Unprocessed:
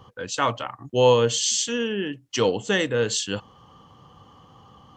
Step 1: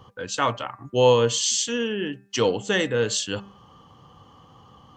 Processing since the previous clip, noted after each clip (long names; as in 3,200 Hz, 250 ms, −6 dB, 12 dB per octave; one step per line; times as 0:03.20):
hum removal 198.1 Hz, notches 13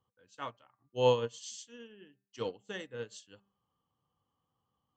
expander for the loud parts 2.5 to 1, over −30 dBFS
level −7.5 dB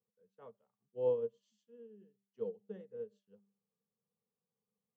pair of resonant band-passes 300 Hz, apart 1.1 octaves
level +1 dB